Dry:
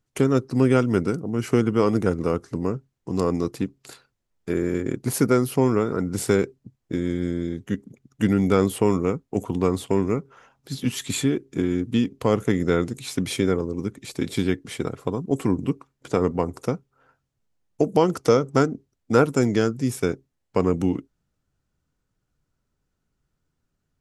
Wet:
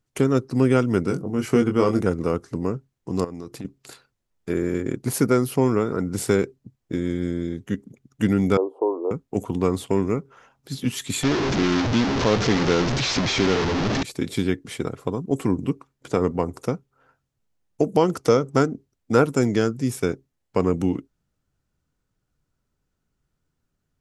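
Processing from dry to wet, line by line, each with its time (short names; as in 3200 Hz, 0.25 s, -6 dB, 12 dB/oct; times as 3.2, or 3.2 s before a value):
1.08–2.01 doubler 21 ms -5.5 dB
3.24–3.65 compressor 10:1, threshold -30 dBFS
8.57–9.11 elliptic band-pass 330–960 Hz
11.23–14.03 delta modulation 32 kbps, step -16.5 dBFS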